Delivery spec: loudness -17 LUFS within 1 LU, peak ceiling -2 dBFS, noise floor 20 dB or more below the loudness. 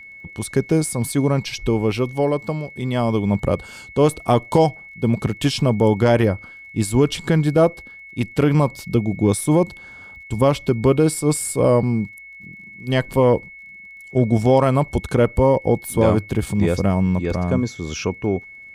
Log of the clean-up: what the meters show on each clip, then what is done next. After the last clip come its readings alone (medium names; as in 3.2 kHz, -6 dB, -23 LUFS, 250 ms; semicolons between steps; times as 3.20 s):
tick rate 26 per s; steady tone 2.2 kHz; tone level -38 dBFS; loudness -19.5 LUFS; peak level -5.5 dBFS; loudness target -17.0 LUFS
-> de-click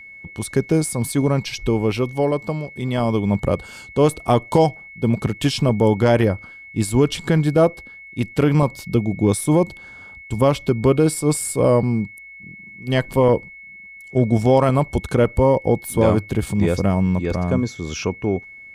tick rate 0 per s; steady tone 2.2 kHz; tone level -38 dBFS
-> band-stop 2.2 kHz, Q 30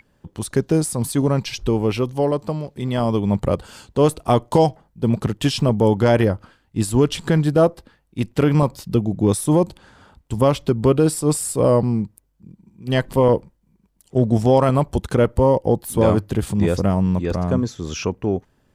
steady tone not found; loudness -19.5 LUFS; peak level -5.0 dBFS; loudness target -17.0 LUFS
-> trim +2.5 dB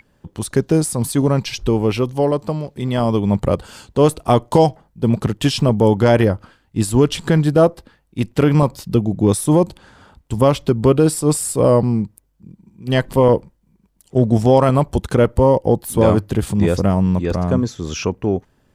loudness -17.0 LUFS; peak level -2.5 dBFS; noise floor -60 dBFS